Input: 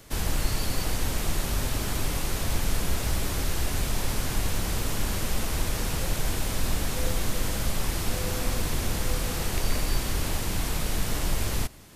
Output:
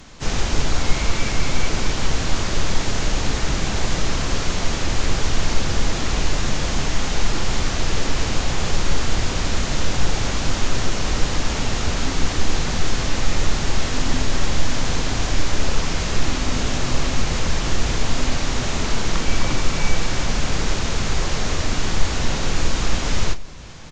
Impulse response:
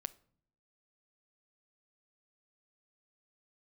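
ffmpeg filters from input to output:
-filter_complex "[0:a]asplit=2[s0][s1];[1:a]atrim=start_sample=2205[s2];[s1][s2]afir=irnorm=-1:irlink=0,volume=2.24[s3];[s0][s3]amix=inputs=2:normalize=0,asetrate=22050,aresample=44100,areverse,acompressor=mode=upward:threshold=0.0282:ratio=2.5,areverse,asplit=2[s4][s5];[s5]adelay=38,volume=0.2[s6];[s4][s6]amix=inputs=2:normalize=0,asplit=2[s7][s8];[s8]asetrate=52444,aresample=44100,atempo=0.840896,volume=0.251[s9];[s7][s9]amix=inputs=2:normalize=0,lowpass=f=1600:p=1,aemphasis=mode=production:type=75fm"

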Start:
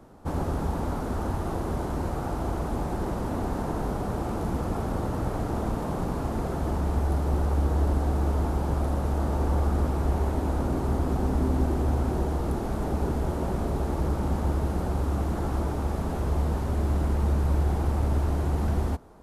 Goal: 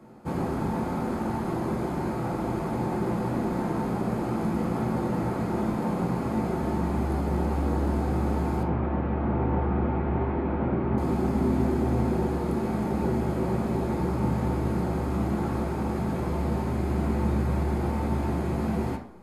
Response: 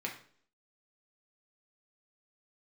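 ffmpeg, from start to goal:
-filter_complex "[0:a]asettb=1/sr,asplit=3[s0][s1][s2];[s0]atrim=end=8.634[s3];[s1]atrim=start=8.63:end=10.98,asetpts=PTS-STARTPTS,afade=t=in:d=0.004:c=qsin,afade=t=out:st=2.346:d=0.004:c=qsin,lowpass=f=2800:w=0.5412,lowpass=f=2800:w=1.3066[s4];[s2]atrim=start=10.976[s5];[s3][s4]acrossfade=d=0.004:c1=hsin:c2=qsin[s6];[s6][s5]acrossfade=d=0.004:c1=qsin:c2=hsin[s7];[1:a]atrim=start_sample=2205[s8];[s7][s8]afir=irnorm=-1:irlink=0"

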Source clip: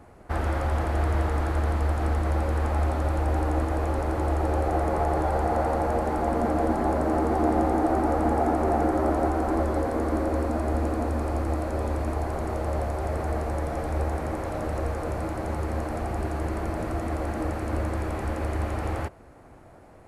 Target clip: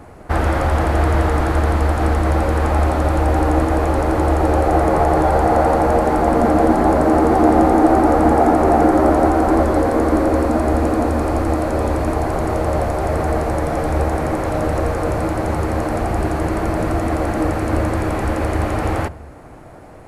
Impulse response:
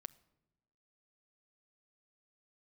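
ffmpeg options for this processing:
-filter_complex "[0:a]asplit=2[s0][s1];[1:a]atrim=start_sample=2205[s2];[s1][s2]afir=irnorm=-1:irlink=0,volume=7.08[s3];[s0][s3]amix=inputs=2:normalize=0,volume=0.708"

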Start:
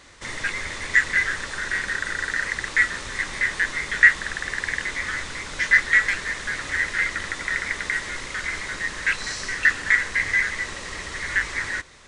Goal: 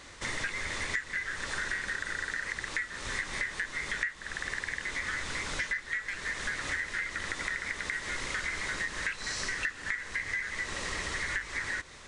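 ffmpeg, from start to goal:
-af "acompressor=threshold=0.0316:ratio=16"

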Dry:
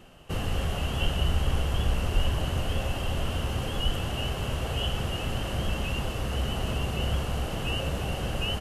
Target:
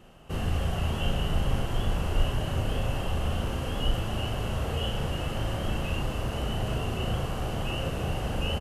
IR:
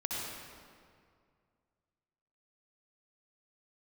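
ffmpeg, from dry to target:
-filter_complex "[0:a]asplit=2[s0][s1];[s1]adelay=37,volume=0.708[s2];[s0][s2]amix=inputs=2:normalize=0,asplit=2[s3][s4];[1:a]atrim=start_sample=2205,lowpass=2100[s5];[s4][s5]afir=irnorm=-1:irlink=0,volume=0.422[s6];[s3][s6]amix=inputs=2:normalize=0,volume=0.596"

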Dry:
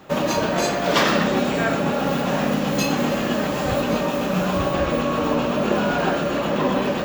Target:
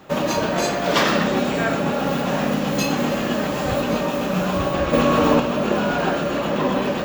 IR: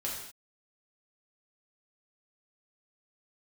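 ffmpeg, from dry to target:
-filter_complex "[0:a]asettb=1/sr,asplit=3[s0][s1][s2];[s0]atrim=end=4.934[s3];[s1]atrim=start=4.93:end=5.4,asetpts=PTS-STARTPTS,afade=t=in:d=0.004:c=qsin,afade=t=out:st=0.466:d=0.004:c=qsin,acontrast=36[s4];[s2]atrim=start=5.396[s5];[s3][s4]acrossfade=d=0.004:c1=hsin:c2=qsin[s6];[s6][s5]acrossfade=d=0.004:c1=qsin:c2=hsin"

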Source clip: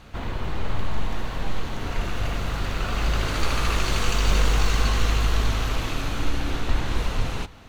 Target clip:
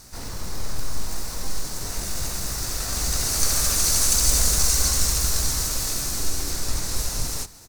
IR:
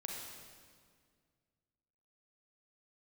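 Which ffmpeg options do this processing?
-filter_complex "[0:a]asplit=3[s0][s1][s2];[s1]asetrate=22050,aresample=44100,atempo=2,volume=0.562[s3];[s2]asetrate=58866,aresample=44100,atempo=0.749154,volume=0.708[s4];[s0][s3][s4]amix=inputs=3:normalize=0,aexciter=amount=11.8:drive=5.3:freq=4700,volume=0.422"

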